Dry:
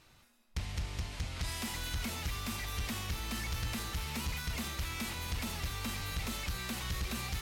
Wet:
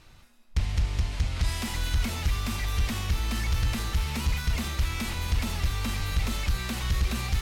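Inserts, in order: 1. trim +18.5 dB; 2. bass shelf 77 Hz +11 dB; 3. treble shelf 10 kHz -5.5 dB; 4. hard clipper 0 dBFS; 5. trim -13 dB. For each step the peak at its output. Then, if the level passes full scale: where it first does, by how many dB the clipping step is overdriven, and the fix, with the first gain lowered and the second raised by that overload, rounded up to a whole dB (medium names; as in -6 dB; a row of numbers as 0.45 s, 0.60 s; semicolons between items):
-10.5 dBFS, -2.0 dBFS, -2.0 dBFS, -2.0 dBFS, -15.0 dBFS; nothing clips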